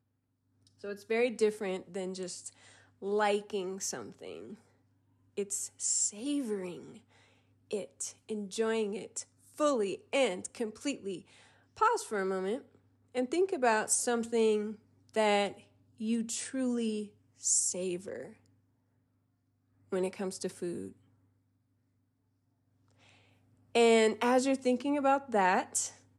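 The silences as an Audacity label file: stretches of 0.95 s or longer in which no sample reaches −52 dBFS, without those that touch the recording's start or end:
18.460000	19.920000	silence
20.920000	23.030000	silence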